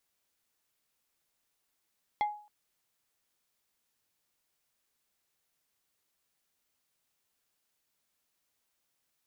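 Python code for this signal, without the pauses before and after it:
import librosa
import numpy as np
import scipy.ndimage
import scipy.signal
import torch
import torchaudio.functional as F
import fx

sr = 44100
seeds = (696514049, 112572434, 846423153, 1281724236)

y = fx.strike_wood(sr, length_s=0.27, level_db=-23.5, body='plate', hz=836.0, decay_s=0.44, tilt_db=8.5, modes=5)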